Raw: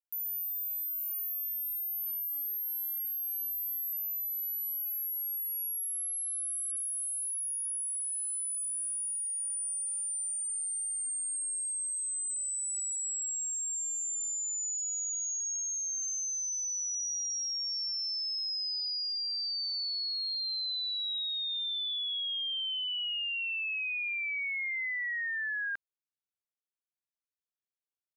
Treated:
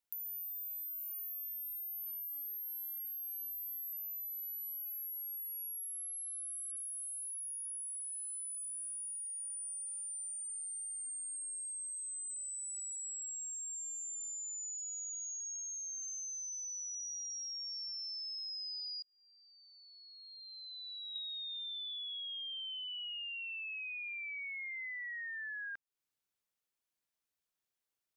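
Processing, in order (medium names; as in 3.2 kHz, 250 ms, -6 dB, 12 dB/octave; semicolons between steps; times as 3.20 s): 19.02–21.16 s: steep low-pass 3.4 kHz 72 dB/octave; compression, threshold -48 dBFS, peak gain reduction 13.5 dB; trim +5 dB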